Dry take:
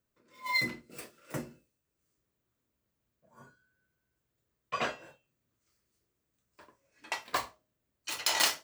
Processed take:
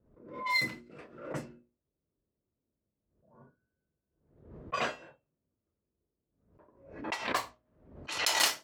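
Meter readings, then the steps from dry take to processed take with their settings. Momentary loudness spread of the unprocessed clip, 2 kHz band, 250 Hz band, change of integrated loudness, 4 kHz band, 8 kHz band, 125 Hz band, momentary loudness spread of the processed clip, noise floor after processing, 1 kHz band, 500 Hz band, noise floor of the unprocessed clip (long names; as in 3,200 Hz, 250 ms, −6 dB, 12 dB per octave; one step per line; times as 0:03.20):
19 LU, +1.0 dB, +1.5 dB, +0.5 dB, +0.5 dB, 0.0 dB, +0.5 dB, 21 LU, below −85 dBFS, +1.0 dB, +2.0 dB, −83 dBFS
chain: low-pass that shuts in the quiet parts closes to 550 Hz, open at −31.5 dBFS
mains-hum notches 60/120/180/240/300/360 Hz
background raised ahead of every attack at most 85 dB per second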